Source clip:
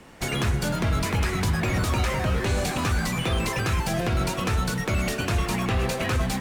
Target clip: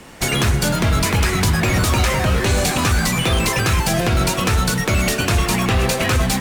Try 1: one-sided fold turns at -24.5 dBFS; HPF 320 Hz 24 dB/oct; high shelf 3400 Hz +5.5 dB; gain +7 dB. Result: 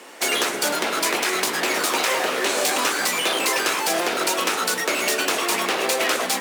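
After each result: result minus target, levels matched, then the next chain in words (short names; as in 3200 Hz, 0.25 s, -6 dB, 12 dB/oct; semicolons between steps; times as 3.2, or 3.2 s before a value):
one-sided fold: distortion +19 dB; 250 Hz band -6.5 dB
one-sided fold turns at -18.5 dBFS; HPF 320 Hz 24 dB/oct; high shelf 3400 Hz +5.5 dB; gain +7 dB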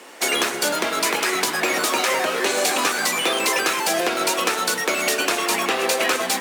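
250 Hz band -6.0 dB
one-sided fold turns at -18.5 dBFS; high shelf 3400 Hz +5.5 dB; gain +7 dB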